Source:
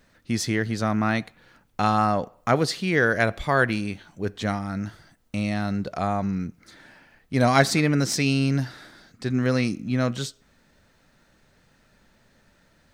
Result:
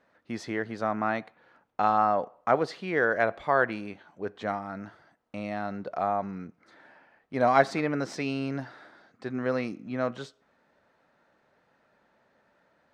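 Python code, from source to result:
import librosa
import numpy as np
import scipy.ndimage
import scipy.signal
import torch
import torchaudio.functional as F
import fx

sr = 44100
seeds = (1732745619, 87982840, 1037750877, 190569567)

y = fx.bandpass_q(x, sr, hz=780.0, q=0.88)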